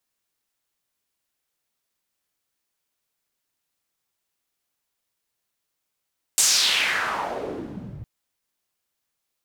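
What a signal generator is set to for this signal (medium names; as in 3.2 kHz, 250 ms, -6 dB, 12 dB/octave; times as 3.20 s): swept filtered noise pink, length 1.66 s bandpass, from 8.1 kHz, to 100 Hz, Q 2.5, exponential, gain ramp -23 dB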